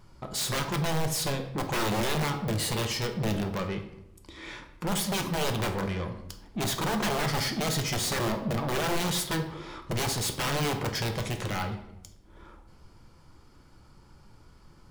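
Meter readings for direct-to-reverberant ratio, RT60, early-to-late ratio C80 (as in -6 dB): 5.0 dB, 0.85 s, 11.5 dB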